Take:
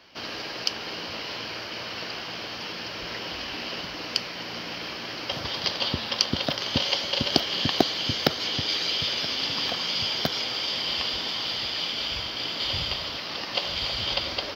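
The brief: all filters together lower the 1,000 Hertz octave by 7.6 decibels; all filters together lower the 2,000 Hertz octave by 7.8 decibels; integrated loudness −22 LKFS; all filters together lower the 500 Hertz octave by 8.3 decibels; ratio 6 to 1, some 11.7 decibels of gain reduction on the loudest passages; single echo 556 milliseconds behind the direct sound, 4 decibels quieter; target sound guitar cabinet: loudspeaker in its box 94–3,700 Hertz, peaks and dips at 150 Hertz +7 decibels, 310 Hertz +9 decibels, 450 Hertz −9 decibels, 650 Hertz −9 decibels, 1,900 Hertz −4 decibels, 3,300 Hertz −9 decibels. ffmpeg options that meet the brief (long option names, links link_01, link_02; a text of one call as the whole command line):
ffmpeg -i in.wav -af "equalizer=frequency=500:width_type=o:gain=-5,equalizer=frequency=1000:width_type=o:gain=-4,equalizer=frequency=2000:width_type=o:gain=-5.5,acompressor=threshold=-32dB:ratio=6,highpass=94,equalizer=frequency=150:width_type=q:width=4:gain=7,equalizer=frequency=310:width_type=q:width=4:gain=9,equalizer=frequency=450:width_type=q:width=4:gain=-9,equalizer=frequency=650:width_type=q:width=4:gain=-9,equalizer=frequency=1900:width_type=q:width=4:gain=-4,equalizer=frequency=3300:width_type=q:width=4:gain=-9,lowpass=frequency=3700:width=0.5412,lowpass=frequency=3700:width=1.3066,aecho=1:1:556:0.631,volume=16.5dB" out.wav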